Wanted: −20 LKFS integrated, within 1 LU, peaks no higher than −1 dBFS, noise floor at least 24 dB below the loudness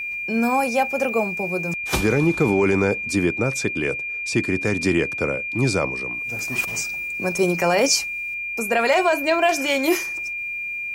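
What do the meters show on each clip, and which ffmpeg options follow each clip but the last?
interfering tone 2,400 Hz; level of the tone −26 dBFS; integrated loudness −21.5 LKFS; sample peak −7.0 dBFS; target loudness −20.0 LKFS
→ -af "bandreject=frequency=2400:width=30"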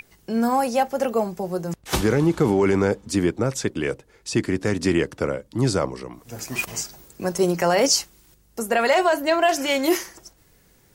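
interfering tone none found; integrated loudness −22.5 LKFS; sample peak −7.0 dBFS; target loudness −20.0 LKFS
→ -af "volume=2.5dB"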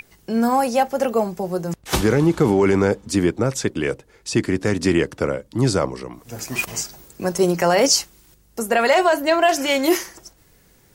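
integrated loudness −20.0 LKFS; sample peak −4.5 dBFS; background noise floor −55 dBFS

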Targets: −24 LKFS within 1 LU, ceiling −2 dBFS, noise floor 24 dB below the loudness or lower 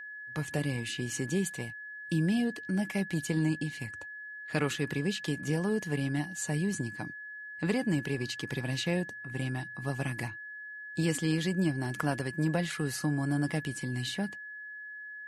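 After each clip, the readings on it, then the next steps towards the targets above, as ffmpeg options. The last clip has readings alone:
interfering tone 1,700 Hz; level of the tone −41 dBFS; integrated loudness −33.0 LKFS; sample peak −15.0 dBFS; target loudness −24.0 LKFS
→ -af "bandreject=frequency=1700:width=30"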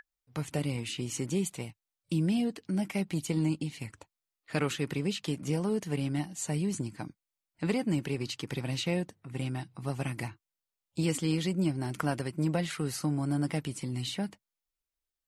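interfering tone none found; integrated loudness −33.0 LKFS; sample peak −15.0 dBFS; target loudness −24.0 LKFS
→ -af "volume=9dB"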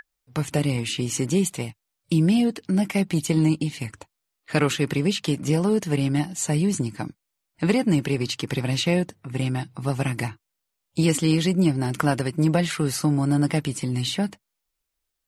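integrated loudness −24.0 LKFS; sample peak −6.0 dBFS; background noise floor −81 dBFS

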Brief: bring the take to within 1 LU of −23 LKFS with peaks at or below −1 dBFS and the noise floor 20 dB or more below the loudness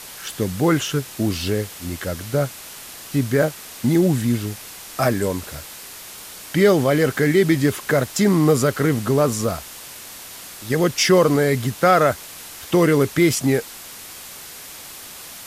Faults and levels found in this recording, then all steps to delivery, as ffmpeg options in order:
background noise floor −38 dBFS; target noise floor −40 dBFS; integrated loudness −19.5 LKFS; sample peak −3.5 dBFS; target loudness −23.0 LKFS
→ -af "afftdn=noise_reduction=6:noise_floor=-38"
-af "volume=-3.5dB"

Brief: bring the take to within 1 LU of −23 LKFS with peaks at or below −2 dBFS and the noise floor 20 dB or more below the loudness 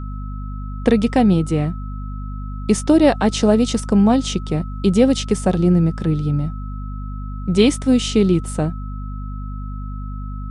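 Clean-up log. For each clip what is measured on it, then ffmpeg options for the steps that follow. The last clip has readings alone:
mains hum 50 Hz; hum harmonics up to 250 Hz; level of the hum −25 dBFS; interfering tone 1,300 Hz; level of the tone −39 dBFS; integrated loudness −17.5 LKFS; sample peak −1.0 dBFS; target loudness −23.0 LKFS
→ -af "bandreject=frequency=50:width_type=h:width=4,bandreject=frequency=100:width_type=h:width=4,bandreject=frequency=150:width_type=h:width=4,bandreject=frequency=200:width_type=h:width=4,bandreject=frequency=250:width_type=h:width=4"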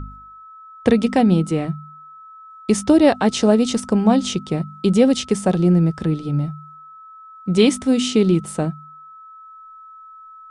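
mains hum none found; interfering tone 1,300 Hz; level of the tone −39 dBFS
→ -af "bandreject=frequency=1300:width=30"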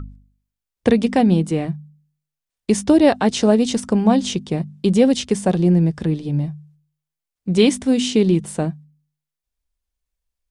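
interfering tone none found; integrated loudness −18.0 LKFS; sample peak −2.5 dBFS; target loudness −23.0 LKFS
→ -af "volume=-5dB"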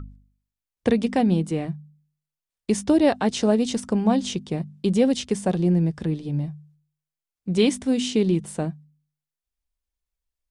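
integrated loudness −23.0 LKFS; sample peak −7.5 dBFS; background noise floor −89 dBFS

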